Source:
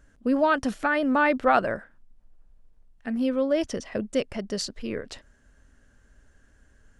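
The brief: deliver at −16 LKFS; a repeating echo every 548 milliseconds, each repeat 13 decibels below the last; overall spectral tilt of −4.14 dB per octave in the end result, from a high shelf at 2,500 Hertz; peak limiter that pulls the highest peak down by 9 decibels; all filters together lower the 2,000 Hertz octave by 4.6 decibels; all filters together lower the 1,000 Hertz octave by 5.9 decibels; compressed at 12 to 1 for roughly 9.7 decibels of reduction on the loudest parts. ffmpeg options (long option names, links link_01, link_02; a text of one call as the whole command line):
ffmpeg -i in.wav -af "equalizer=frequency=1000:width_type=o:gain=-7.5,equalizer=frequency=2000:width_type=o:gain=-4.5,highshelf=frequency=2500:gain=4,acompressor=threshold=-29dB:ratio=12,alimiter=level_in=3.5dB:limit=-24dB:level=0:latency=1,volume=-3.5dB,aecho=1:1:548|1096|1644:0.224|0.0493|0.0108,volume=21dB" out.wav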